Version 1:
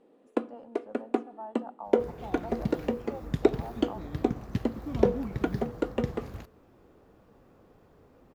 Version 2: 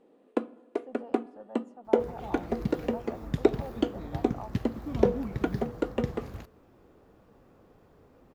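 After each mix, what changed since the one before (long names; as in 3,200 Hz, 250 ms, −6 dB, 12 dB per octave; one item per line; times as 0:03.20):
speech: entry +0.50 s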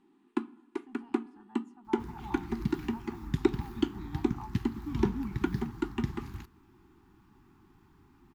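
master: add Chebyshev band-stop filter 370–840 Hz, order 3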